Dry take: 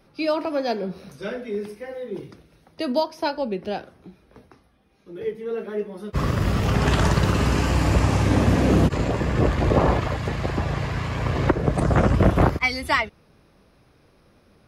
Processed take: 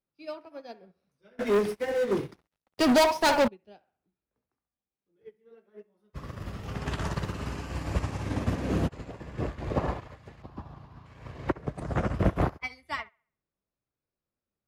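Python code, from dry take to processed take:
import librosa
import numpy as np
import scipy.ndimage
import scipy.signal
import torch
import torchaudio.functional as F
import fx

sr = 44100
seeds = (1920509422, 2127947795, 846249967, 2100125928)

y = fx.echo_wet_bandpass(x, sr, ms=67, feedback_pct=42, hz=1300.0, wet_db=-7.0)
y = fx.leveller(y, sr, passes=5, at=(1.39, 3.48))
y = fx.graphic_eq_10(y, sr, hz=(250, 500, 1000, 2000, 8000), db=(4, -6, 7, -11, -12), at=(10.42, 11.06))
y = fx.upward_expand(y, sr, threshold_db=-33.0, expansion=2.5)
y = y * 10.0 ** (-4.5 / 20.0)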